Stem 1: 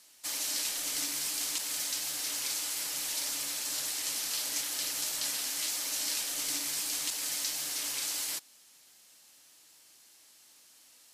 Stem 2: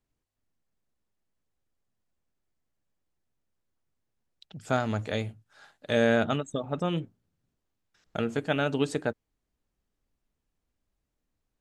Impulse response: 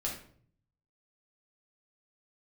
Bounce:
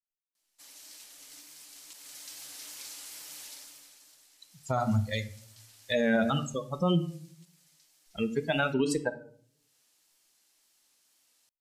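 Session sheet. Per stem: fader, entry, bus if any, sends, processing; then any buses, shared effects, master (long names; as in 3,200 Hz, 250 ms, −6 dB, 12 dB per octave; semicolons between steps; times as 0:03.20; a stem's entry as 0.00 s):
0:01.80 −22.5 dB → 0:02.39 −15.5 dB → 0:04.16 −15.5 dB → 0:04.85 −7.5 dB → 0:06.00 −7.5 dB → 0:06.58 −15.5 dB, 0.35 s, no send, automatic ducking −21 dB, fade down 1.00 s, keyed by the second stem
+2.0 dB, 0.00 s, send −9.5 dB, spectral dynamics exaggerated over time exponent 3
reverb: on, RT60 0.55 s, pre-delay 5 ms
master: tape wow and flutter 42 cents; automatic gain control gain up to 5.5 dB; brickwall limiter −17.5 dBFS, peak gain reduction 11 dB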